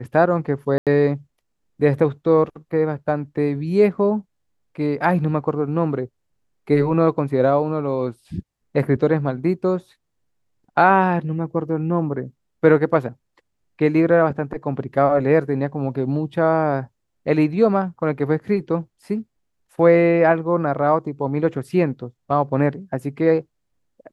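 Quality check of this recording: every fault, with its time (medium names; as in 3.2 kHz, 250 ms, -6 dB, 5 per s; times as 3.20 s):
0.78–0.87 s: dropout 87 ms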